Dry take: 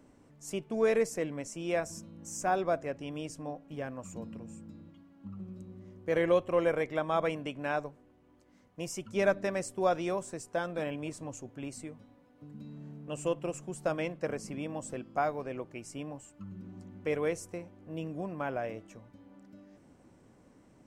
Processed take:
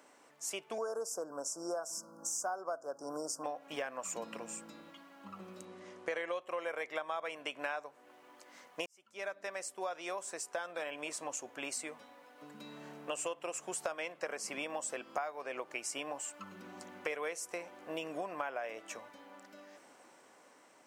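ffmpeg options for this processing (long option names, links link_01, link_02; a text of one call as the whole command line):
ffmpeg -i in.wav -filter_complex "[0:a]asettb=1/sr,asplit=3[link_01][link_02][link_03];[link_01]atrim=end=0.784[link_04];[link_02]atrim=start=0.78:end=3.44,asetpts=PTS-STARTPTS,afade=type=in:duration=0.004:curve=qsin,afade=type=out:start_time=2.656:duration=0.004:curve=qsin,asuperstop=centerf=2700:order=20:qfactor=0.85[link_05];[link_03]atrim=start=3.436[link_06];[link_04][link_05]acrossfade=duration=0.004:curve1=hsin:curve2=qsin[link_07];[link_07][link_06]acrossfade=duration=0.004:curve1=qsin:curve2=hsin,asettb=1/sr,asplit=3[link_08][link_09][link_10];[link_08]atrim=end=5.654[link_11];[link_09]atrim=start=5.65:end=6.41,asetpts=PTS-STARTPTS,afade=type=in:duration=0.004:curve=qsin,afade=type=out:start_time=0.756:duration=0.004:curve=qsin,lowpass=frequency=9800:width=0.5412,lowpass=frequency=9800:width=1.3066[link_12];[link_10]atrim=start=6.406[link_13];[link_11][link_12]acrossfade=duration=0.004:curve1=hsin:curve2=qsin[link_14];[link_14][link_13]acrossfade=duration=0.004:curve1=qsin:curve2=hsin,asplit=2[link_15][link_16];[link_15]atrim=end=8.86,asetpts=PTS-STARTPTS,afade=type=out:start_time=8.856:duration=0.004:curve=hsin[link_17];[link_16]atrim=start=8.86,asetpts=PTS-STARTPTS,afade=type=in:duration=4.06[link_18];[link_17][link_18]concat=n=2:v=0:a=1,dynaudnorm=framelen=450:gausssize=9:maxgain=7dB,highpass=750,acompressor=threshold=-43dB:ratio=8,volume=7.5dB" out.wav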